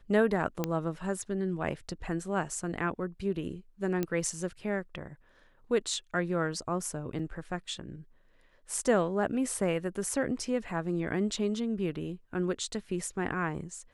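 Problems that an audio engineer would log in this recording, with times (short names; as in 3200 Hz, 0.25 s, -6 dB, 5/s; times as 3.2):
0.64 pop -15 dBFS
4.03 pop -17 dBFS
7.19 gap 4 ms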